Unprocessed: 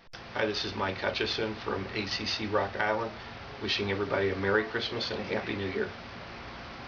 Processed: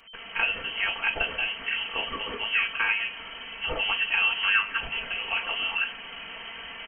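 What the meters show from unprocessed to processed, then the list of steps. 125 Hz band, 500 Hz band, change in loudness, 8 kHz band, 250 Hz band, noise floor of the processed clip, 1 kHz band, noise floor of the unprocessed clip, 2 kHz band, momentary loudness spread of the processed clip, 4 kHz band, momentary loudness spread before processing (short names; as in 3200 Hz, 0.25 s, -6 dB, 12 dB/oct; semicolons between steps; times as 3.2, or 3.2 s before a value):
-12.5 dB, -10.5 dB, +5.0 dB, n/a, -13.0 dB, -42 dBFS, 0.0 dB, -45 dBFS, +8.5 dB, 15 LU, +5.5 dB, 14 LU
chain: inverted band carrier 3100 Hz; comb 4.4 ms, depth 61%; gain +1.5 dB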